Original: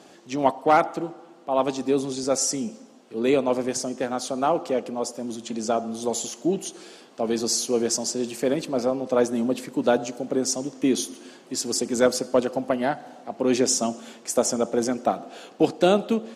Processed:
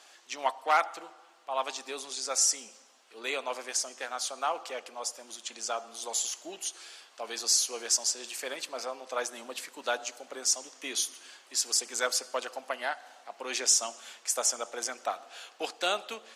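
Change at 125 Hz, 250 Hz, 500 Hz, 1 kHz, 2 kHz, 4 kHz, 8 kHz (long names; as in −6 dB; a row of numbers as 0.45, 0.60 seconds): below −30 dB, −25.0 dB, −14.5 dB, −6.5 dB, −1.0 dB, 0.0 dB, 0.0 dB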